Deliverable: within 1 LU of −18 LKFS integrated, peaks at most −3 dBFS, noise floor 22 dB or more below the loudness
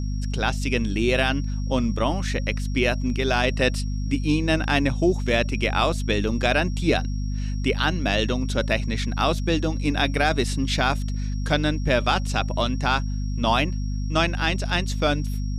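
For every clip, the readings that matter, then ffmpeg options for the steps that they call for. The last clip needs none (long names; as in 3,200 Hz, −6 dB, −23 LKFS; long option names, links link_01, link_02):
mains hum 50 Hz; hum harmonics up to 250 Hz; level of the hum −24 dBFS; interfering tone 5,600 Hz; level of the tone −46 dBFS; integrated loudness −23.5 LKFS; sample peak −7.0 dBFS; target loudness −18.0 LKFS
→ -af "bandreject=frequency=50:width_type=h:width=4,bandreject=frequency=100:width_type=h:width=4,bandreject=frequency=150:width_type=h:width=4,bandreject=frequency=200:width_type=h:width=4,bandreject=frequency=250:width_type=h:width=4"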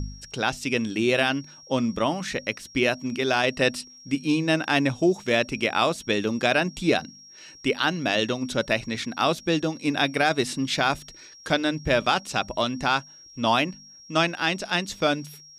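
mains hum none found; interfering tone 5,600 Hz; level of the tone −46 dBFS
→ -af "bandreject=frequency=5600:width=30"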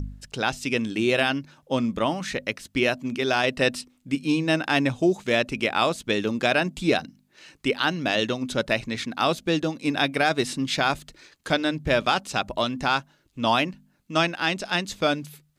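interfering tone none found; integrated loudness −24.5 LKFS; sample peak −8.0 dBFS; target loudness −18.0 LKFS
→ -af "volume=6.5dB,alimiter=limit=-3dB:level=0:latency=1"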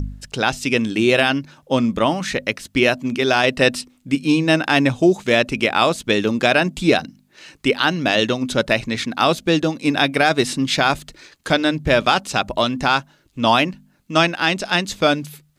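integrated loudness −18.5 LKFS; sample peak −3.0 dBFS; background noise floor −58 dBFS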